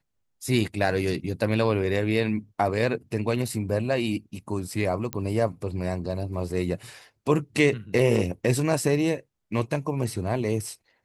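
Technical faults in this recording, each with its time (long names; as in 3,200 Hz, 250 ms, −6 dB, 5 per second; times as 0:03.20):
0:05.13: click −13 dBFS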